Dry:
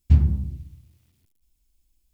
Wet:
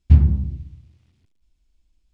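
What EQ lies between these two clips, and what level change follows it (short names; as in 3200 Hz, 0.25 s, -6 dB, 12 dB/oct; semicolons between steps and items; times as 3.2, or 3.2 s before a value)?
air absorption 110 m; +4.0 dB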